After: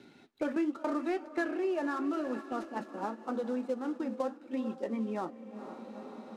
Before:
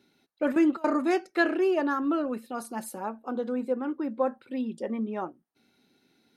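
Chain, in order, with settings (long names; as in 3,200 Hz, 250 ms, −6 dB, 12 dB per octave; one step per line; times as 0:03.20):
gap after every zero crossing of 0.063 ms
on a send: feedback delay with all-pass diffusion 454 ms, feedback 51%, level −13.5 dB
on the sum: flanger 0.82 Hz, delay 6.5 ms, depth 8.5 ms, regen −56%
noise gate −38 dBFS, range −7 dB
in parallel at −0.5 dB: downward compressor, threshold −39 dBFS, peak gain reduction 16 dB
on the sum: high-frequency loss of the air 62 metres
multiband upward and downward compressor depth 70%
level −4.5 dB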